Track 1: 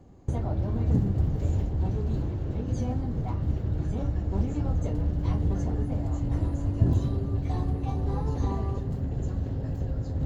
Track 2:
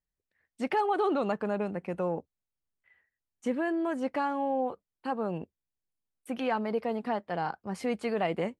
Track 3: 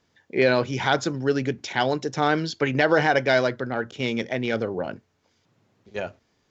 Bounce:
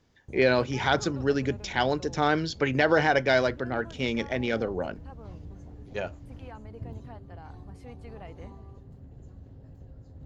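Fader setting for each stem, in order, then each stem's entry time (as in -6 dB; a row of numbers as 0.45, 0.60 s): -17.5, -17.0, -2.5 dB; 0.00, 0.00, 0.00 s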